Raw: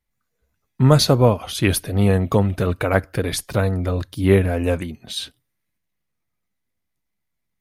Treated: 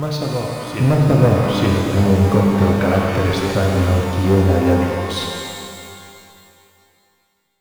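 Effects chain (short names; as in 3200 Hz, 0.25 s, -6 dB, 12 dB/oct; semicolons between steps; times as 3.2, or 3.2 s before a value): on a send: reverse echo 0.88 s -11 dB; on the sum: treble ducked by the level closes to 670 Hz, closed at -12 dBFS; hard clip -11.5 dBFS, distortion -14 dB; in parallel at -7 dB: bit-crush 5-bit; on the sum: shimmer reverb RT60 2.5 s, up +12 st, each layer -8 dB, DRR -1 dB; gain -2.5 dB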